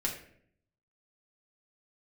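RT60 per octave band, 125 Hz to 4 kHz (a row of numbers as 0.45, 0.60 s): 1.0, 0.85, 0.70, 0.55, 0.60, 0.40 s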